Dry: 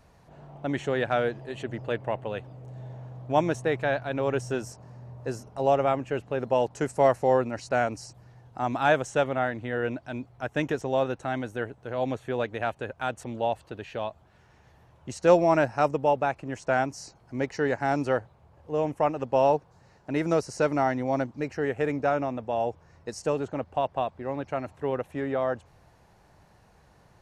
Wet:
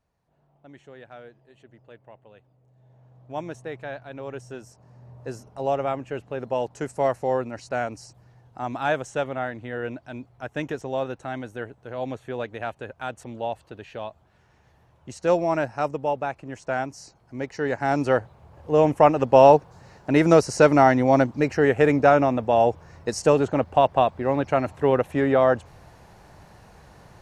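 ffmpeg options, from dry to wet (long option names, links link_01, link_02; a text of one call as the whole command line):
ffmpeg -i in.wav -af "volume=9dB,afade=type=in:start_time=2.77:duration=0.66:silence=0.316228,afade=type=in:start_time=4.71:duration=0.45:silence=0.473151,afade=type=in:start_time=17.51:duration=1.3:silence=0.281838" out.wav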